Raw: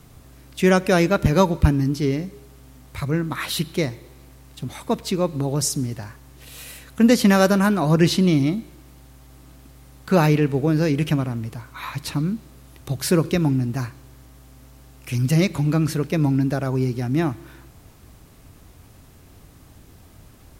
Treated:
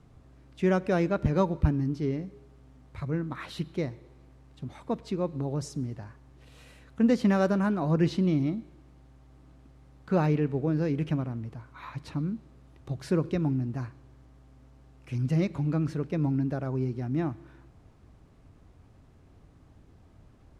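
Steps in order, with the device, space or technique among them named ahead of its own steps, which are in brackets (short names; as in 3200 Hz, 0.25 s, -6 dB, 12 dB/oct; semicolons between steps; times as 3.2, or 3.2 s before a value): through cloth (LPF 7800 Hz 12 dB/oct; high shelf 2200 Hz -12 dB); gain -7.5 dB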